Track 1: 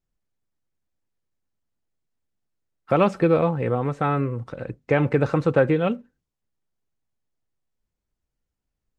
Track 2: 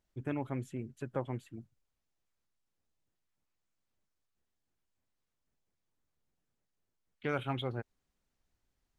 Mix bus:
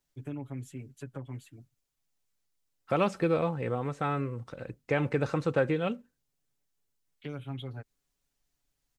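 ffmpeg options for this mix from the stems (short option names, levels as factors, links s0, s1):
-filter_complex "[0:a]volume=0.376[s0];[1:a]aecho=1:1:7.1:0.89,acrossover=split=320[s1][s2];[s2]acompressor=threshold=0.01:ratio=10[s3];[s1][s3]amix=inputs=2:normalize=0,volume=0.562[s4];[s0][s4]amix=inputs=2:normalize=0,highshelf=f=3100:g=9.5"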